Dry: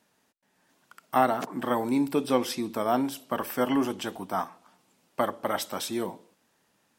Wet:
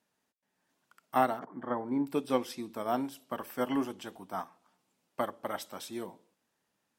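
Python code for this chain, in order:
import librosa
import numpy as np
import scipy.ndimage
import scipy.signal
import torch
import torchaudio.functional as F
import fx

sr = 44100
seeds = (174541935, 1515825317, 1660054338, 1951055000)

y = fx.savgol(x, sr, points=41, at=(1.39, 2.07))
y = fx.upward_expand(y, sr, threshold_db=-33.0, expansion=1.5)
y = y * librosa.db_to_amplitude(-3.5)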